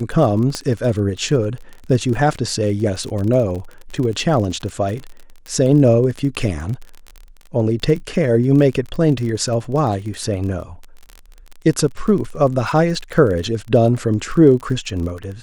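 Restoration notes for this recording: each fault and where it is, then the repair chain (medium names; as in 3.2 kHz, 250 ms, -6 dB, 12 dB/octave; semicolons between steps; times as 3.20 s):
crackle 32 per s -25 dBFS
0.55 s: pop -9 dBFS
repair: de-click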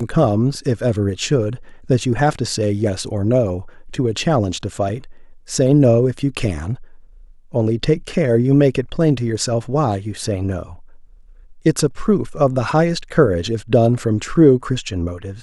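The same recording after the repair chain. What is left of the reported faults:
nothing left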